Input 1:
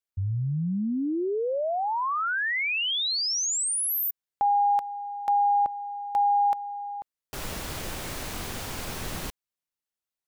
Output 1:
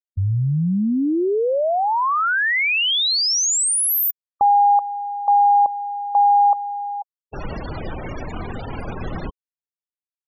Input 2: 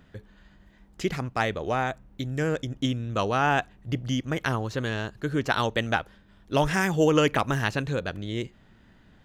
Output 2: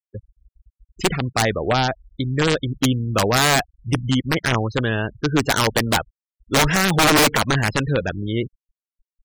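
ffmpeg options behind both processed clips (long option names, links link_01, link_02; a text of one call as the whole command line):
ffmpeg -i in.wav -af "aeval=exprs='(mod(7.08*val(0)+1,2)-1)/7.08':channel_layout=same,afftfilt=real='re*gte(hypot(re,im),0.0251)':imag='im*gte(hypot(re,im),0.0251)':win_size=1024:overlap=0.75,volume=8dB" out.wav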